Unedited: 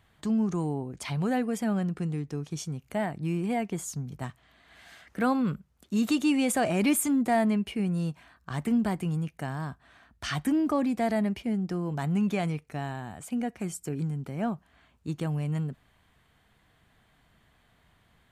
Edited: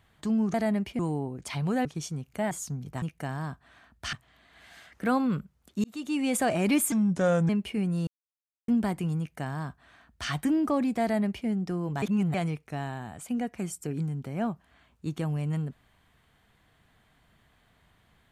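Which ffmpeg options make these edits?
-filter_complex "[0:a]asplit=14[s0][s1][s2][s3][s4][s5][s6][s7][s8][s9][s10][s11][s12][s13];[s0]atrim=end=0.542[s14];[s1]atrim=start=11.038:end=11.492[s15];[s2]atrim=start=0.538:end=1.402[s16];[s3]atrim=start=2.408:end=3.072[s17];[s4]atrim=start=3.768:end=4.282[s18];[s5]atrim=start=9.208:end=10.322[s19];[s6]atrim=start=4.278:end=5.99,asetpts=PTS-STARTPTS,afade=t=out:st=1.708:d=0.004:c=hsin[s20];[s7]atrim=start=5.99:end=7.074,asetpts=PTS-STARTPTS,afade=t=in:d=0.53[s21];[s8]atrim=start=7.07:end=7.51,asetpts=PTS-STARTPTS,asetrate=33957,aresample=44100[s22];[s9]atrim=start=7.506:end=8.09,asetpts=PTS-STARTPTS,afade=t=out:st=0.58:d=0.004:c=hsin[s23];[s10]atrim=start=8.09:end=8.7,asetpts=PTS-STARTPTS,volume=0[s24];[s11]atrim=start=8.7:end=12.042,asetpts=PTS-STARTPTS,afade=t=in:d=0.004:c=hsin[s25];[s12]atrim=start=12.038:end=12.362,asetpts=PTS-STARTPTS,areverse[s26];[s13]atrim=start=12.358[s27];[s14][s15]acrossfade=d=0.004:c1=hsin:c2=hsin[s28];[s28][s16]acrossfade=d=0.004:c1=hsin:c2=hsin[s29];[s29][s17]acrossfade=d=0.004:c1=hsin:c2=hsin[s30];[s30][s18]acrossfade=d=0.004:c1=hsin:c2=hsin[s31];[s31][s19]acrossfade=d=0.004:c1=hsin:c2=hsin[s32];[s20][s21]concat=n=2:v=0:a=1[s33];[s32][s33]acrossfade=d=0.004:c1=hsin:c2=hsin[s34];[s34][s22]acrossfade=d=0.004:c1=hsin:c2=hsin[s35];[s23][s24][s25]concat=n=3:v=0:a=1[s36];[s35][s36]acrossfade=d=0.004:c1=hsin:c2=hsin[s37];[s37][s26]acrossfade=d=0.004:c1=hsin:c2=hsin[s38];[s38][s27]acrossfade=d=0.004:c1=hsin:c2=hsin"

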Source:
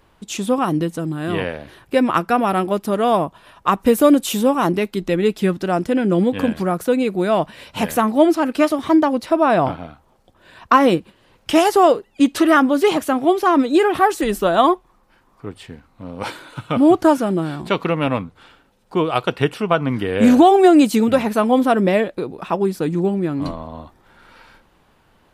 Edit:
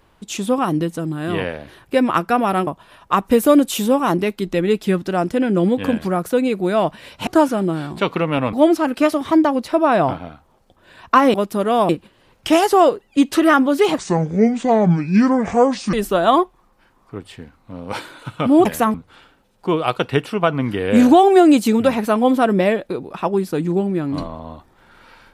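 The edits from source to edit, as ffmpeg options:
-filter_complex "[0:a]asplit=10[s0][s1][s2][s3][s4][s5][s6][s7][s8][s9];[s0]atrim=end=2.672[s10];[s1]atrim=start=3.218:end=7.822[s11];[s2]atrim=start=16.958:end=18.222[s12];[s3]atrim=start=8.108:end=10.922[s13];[s4]atrim=start=2.668:end=3.222[s14];[s5]atrim=start=10.918:end=13.014[s15];[s6]atrim=start=13.01:end=14.24,asetpts=PTS-STARTPTS,asetrate=27783,aresample=44100[s16];[s7]atrim=start=14.236:end=16.962[s17];[s8]atrim=start=7.818:end=8.112[s18];[s9]atrim=start=18.218[s19];[s10][s11]acrossfade=d=0.004:c1=hsin:c2=hsin[s20];[s20][s12]acrossfade=d=0.004:c1=hsin:c2=hsin[s21];[s21][s13]acrossfade=d=0.004:c1=hsin:c2=hsin[s22];[s22][s14]acrossfade=d=0.004:c1=hsin:c2=hsin[s23];[s23][s15]acrossfade=d=0.004:c1=hsin:c2=hsin[s24];[s24][s16]acrossfade=d=0.004:c1=hsin:c2=hsin[s25];[s25][s17]acrossfade=d=0.004:c1=hsin:c2=hsin[s26];[s26][s18]acrossfade=d=0.004:c1=hsin:c2=hsin[s27];[s27][s19]acrossfade=d=0.004:c1=hsin:c2=hsin"

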